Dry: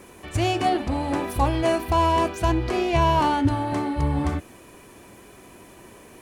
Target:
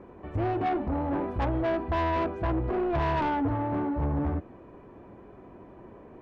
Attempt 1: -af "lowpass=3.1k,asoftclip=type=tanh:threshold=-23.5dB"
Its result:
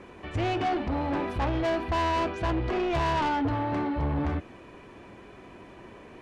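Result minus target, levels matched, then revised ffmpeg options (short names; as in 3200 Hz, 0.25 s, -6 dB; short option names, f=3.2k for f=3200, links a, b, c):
4000 Hz band +8.0 dB
-af "lowpass=1k,asoftclip=type=tanh:threshold=-23.5dB"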